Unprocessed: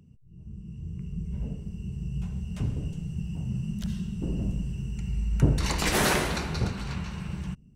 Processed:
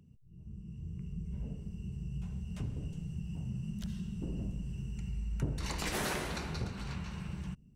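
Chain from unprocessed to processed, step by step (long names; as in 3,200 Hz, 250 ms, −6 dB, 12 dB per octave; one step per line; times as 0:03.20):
downward compressor 2 to 1, threshold −31 dBFS, peak gain reduction 9.5 dB
level −5 dB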